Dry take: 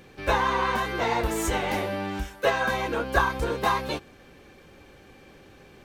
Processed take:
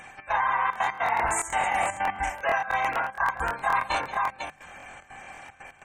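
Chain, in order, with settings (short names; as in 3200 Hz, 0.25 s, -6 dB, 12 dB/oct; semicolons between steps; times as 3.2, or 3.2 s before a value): graphic EQ 2000/4000/8000 Hz +6/-8/+11 dB; on a send: tapped delay 52/189/496 ms -8/-15/-10.5 dB; on the sum: spectral gate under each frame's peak -25 dB strong; resonant low shelf 570 Hz -9 dB, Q 3; reverse; compressor 6:1, threshold -29 dBFS, peak gain reduction 16 dB; reverse; step gate "xx.xxxx.x.xx" 150 bpm -12 dB; notches 50/100/150/200 Hz; crackling interface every 0.11 s, samples 1024, repeat, from 0.71; gain +6.5 dB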